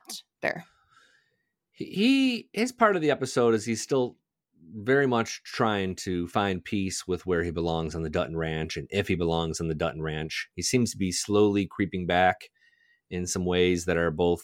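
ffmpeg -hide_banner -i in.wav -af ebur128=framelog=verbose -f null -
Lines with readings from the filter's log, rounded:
Integrated loudness:
  I:         -26.9 LUFS
  Threshold: -37.5 LUFS
Loudness range:
  LRA:         3.1 LU
  Threshold: -47.4 LUFS
  LRA low:   -29.2 LUFS
  LRA high:  -26.0 LUFS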